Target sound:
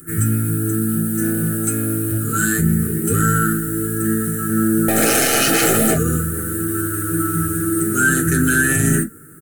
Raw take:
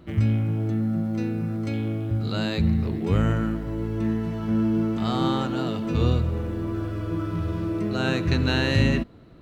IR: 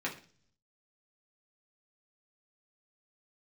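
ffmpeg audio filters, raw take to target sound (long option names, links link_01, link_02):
-filter_complex "[0:a]firequalizer=gain_entry='entry(110,0);entry(170,4);entry(250,-3);entry(400,-3);entry(620,-24);entry(1500,12);entry(2300,-12);entry(4100,-30);entry(8400,10)':delay=0.05:min_phase=1,asettb=1/sr,asplit=3[link_01][link_02][link_03];[link_01]atrim=end=1.224[link_04];[link_02]atrim=start=1.22:end=2.17,asetpts=PTS-STARTPTS,afade=type=in:duration=0.004:curve=qsin,afade=type=out:start_time=0.946:duration=0.004:curve=qsin,aeval=exprs='0.133*(cos(1*acos(clip(val(0)/0.133,-1,1)))-cos(1*PI/2))+0.00668*(cos(5*acos(clip(val(0)/0.133,-1,1)))-cos(5*PI/2))':channel_layout=same[link_05];[link_03]atrim=start=2.166[link_06];[link_04][link_05]acrossfade=duration=0.004:curve1=hsin:curve2=qsin[link_07];[link_07][link_06]acrossfade=duration=0.004:curve1=qsin:curve2=hsin,asettb=1/sr,asplit=3[link_08][link_09][link_10];[link_08]atrim=end=4.884[link_11];[link_09]atrim=start=4.88:end=5.93,asetpts=PTS-STARTPTS,afade=type=in:duration=0.004:curve=qsin,afade=type=out:start_time=1.046:duration=0.004:curve=qsin,aeval=exprs='0.168*sin(PI/2*3.98*val(0)/0.168)':channel_layout=same[link_12];[link_10]atrim=start=5.926[link_13];[link_11][link_12]acrossfade=duration=0.004:curve1=hsin:curve2=qsin[link_14];[link_14][link_13]acrossfade=duration=0.004:curve1=qsin:curve2=hsin,aexciter=amount=11:drive=9.4:freq=5600,aeval=exprs='(tanh(2.24*val(0)+0.25)-tanh(0.25))/2.24':channel_layout=same,asuperstop=centerf=1000:order=8:qfactor=2.4[link_15];[1:a]atrim=start_sample=2205,atrim=end_sample=4410,asetrate=70560,aresample=44100[link_16];[link_15][link_16]afir=irnorm=-1:irlink=0,alimiter=level_in=14dB:limit=-1dB:release=50:level=0:latency=1,volume=-5dB"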